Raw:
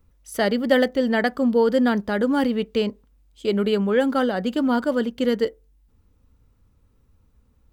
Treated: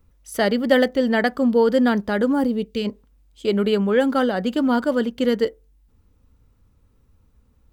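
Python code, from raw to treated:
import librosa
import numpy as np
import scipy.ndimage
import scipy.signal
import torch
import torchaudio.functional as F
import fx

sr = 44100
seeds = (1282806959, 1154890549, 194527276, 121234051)

y = fx.peak_eq(x, sr, hz=fx.line((2.32, 3700.0), (2.84, 740.0)), db=-14.0, octaves=1.8, at=(2.32, 2.84), fade=0.02)
y = y * librosa.db_to_amplitude(1.5)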